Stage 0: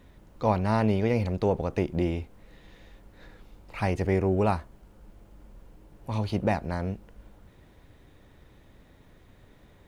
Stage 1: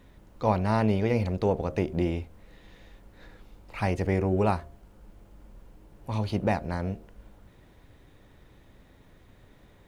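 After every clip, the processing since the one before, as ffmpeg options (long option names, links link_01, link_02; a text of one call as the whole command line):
ffmpeg -i in.wav -af "bandreject=frequency=76.77:width_type=h:width=4,bandreject=frequency=153.54:width_type=h:width=4,bandreject=frequency=230.31:width_type=h:width=4,bandreject=frequency=307.08:width_type=h:width=4,bandreject=frequency=383.85:width_type=h:width=4,bandreject=frequency=460.62:width_type=h:width=4,bandreject=frequency=537.39:width_type=h:width=4,bandreject=frequency=614.16:width_type=h:width=4,bandreject=frequency=690.93:width_type=h:width=4" out.wav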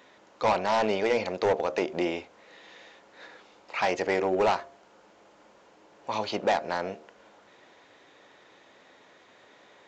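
ffmpeg -i in.wav -af "highpass=510,aresample=16000,asoftclip=type=hard:threshold=-25.5dB,aresample=44100,volume=7.5dB" out.wav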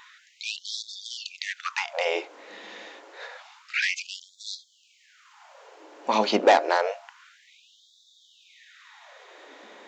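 ffmpeg -i in.wav -af "lowshelf=frequency=120:width_type=q:width=3:gain=-9.5,afftfilt=real='re*gte(b*sr/1024,200*pow(3400/200,0.5+0.5*sin(2*PI*0.28*pts/sr)))':imag='im*gte(b*sr/1024,200*pow(3400/200,0.5+0.5*sin(2*PI*0.28*pts/sr)))':win_size=1024:overlap=0.75,volume=7.5dB" out.wav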